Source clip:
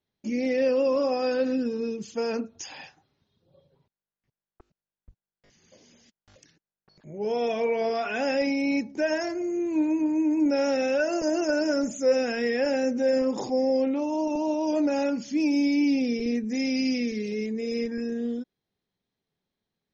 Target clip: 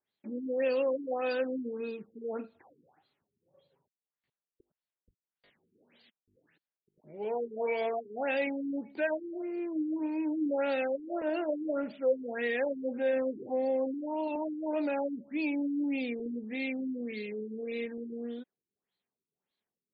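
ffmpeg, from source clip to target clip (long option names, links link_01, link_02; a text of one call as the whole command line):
ffmpeg -i in.wav -af "aemphasis=mode=production:type=riaa,afftfilt=real='re*lt(b*sr/1024,420*pow(4800/420,0.5+0.5*sin(2*PI*1.7*pts/sr)))':imag='im*lt(b*sr/1024,420*pow(4800/420,0.5+0.5*sin(2*PI*1.7*pts/sr)))':win_size=1024:overlap=0.75,volume=-3dB" out.wav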